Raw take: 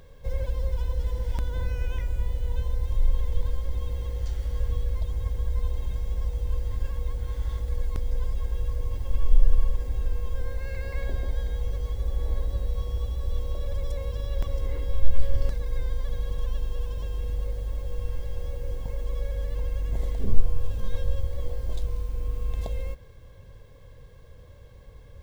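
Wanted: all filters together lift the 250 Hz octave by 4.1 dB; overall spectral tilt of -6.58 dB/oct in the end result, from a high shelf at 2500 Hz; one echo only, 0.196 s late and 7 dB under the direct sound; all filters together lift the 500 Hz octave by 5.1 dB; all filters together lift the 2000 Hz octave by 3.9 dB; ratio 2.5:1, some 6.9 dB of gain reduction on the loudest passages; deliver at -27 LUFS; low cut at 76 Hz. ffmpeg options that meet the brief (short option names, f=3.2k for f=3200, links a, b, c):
-af "highpass=76,equalizer=f=250:t=o:g=4.5,equalizer=f=500:t=o:g=4.5,equalizer=f=2k:t=o:g=8,highshelf=f=2.5k:g=-7.5,acompressor=threshold=-38dB:ratio=2.5,aecho=1:1:196:0.447,volume=14dB"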